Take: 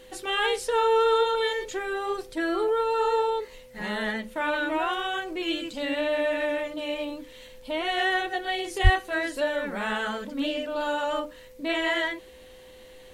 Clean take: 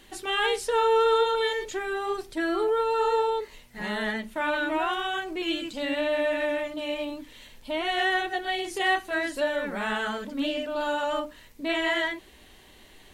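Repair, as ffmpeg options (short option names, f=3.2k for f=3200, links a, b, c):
-filter_complex "[0:a]bandreject=f=510:w=30,asplit=3[a][b][c];[a]afade=t=out:st=8.83:d=0.02[d];[b]highpass=f=140:w=0.5412,highpass=f=140:w=1.3066,afade=t=in:st=8.83:d=0.02,afade=t=out:st=8.95:d=0.02[e];[c]afade=t=in:st=8.95:d=0.02[f];[d][e][f]amix=inputs=3:normalize=0"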